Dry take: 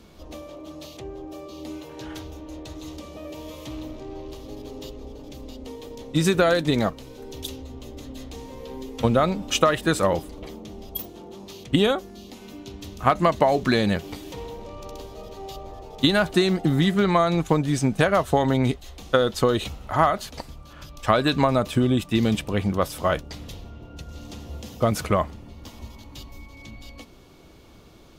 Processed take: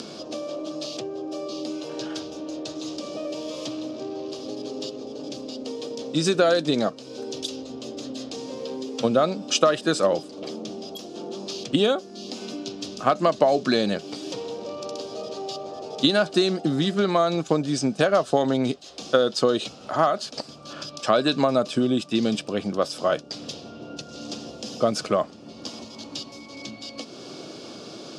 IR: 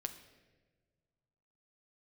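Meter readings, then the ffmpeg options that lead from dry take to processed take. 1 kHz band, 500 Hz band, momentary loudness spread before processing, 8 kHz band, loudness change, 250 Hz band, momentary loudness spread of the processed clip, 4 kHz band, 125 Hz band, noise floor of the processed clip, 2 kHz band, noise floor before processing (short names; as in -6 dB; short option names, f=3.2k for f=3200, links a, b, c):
-2.0 dB, +1.0 dB, 20 LU, +1.5 dB, -3.0 dB, -1.0 dB, 16 LU, +2.0 dB, -7.5 dB, -43 dBFS, -3.0 dB, -47 dBFS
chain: -af "acompressor=mode=upward:threshold=-24dB:ratio=2.5,highpass=f=160:w=0.5412,highpass=f=160:w=1.3066,equalizer=f=180:t=q:w=4:g=-5,equalizer=f=600:t=q:w=4:g=3,equalizer=f=940:t=q:w=4:g=-7,equalizer=f=2k:t=q:w=4:g=-10,equalizer=f=5k:t=q:w=4:g=9,lowpass=f=8.5k:w=0.5412,lowpass=f=8.5k:w=1.3066"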